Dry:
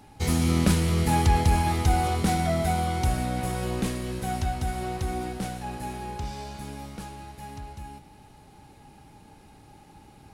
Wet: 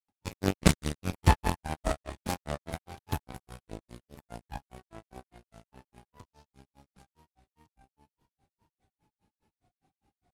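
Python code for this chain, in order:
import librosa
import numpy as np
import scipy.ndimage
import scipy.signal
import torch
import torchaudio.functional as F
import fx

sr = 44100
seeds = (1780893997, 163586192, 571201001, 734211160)

y = fx.cheby_harmonics(x, sr, harmonics=(3, 4), levels_db=(-10, -26), full_scale_db=-9.0)
y = fx.granulator(y, sr, seeds[0], grain_ms=136.0, per_s=4.9, spray_ms=100.0, spread_st=3)
y = F.gain(torch.from_numpy(y), 6.5).numpy()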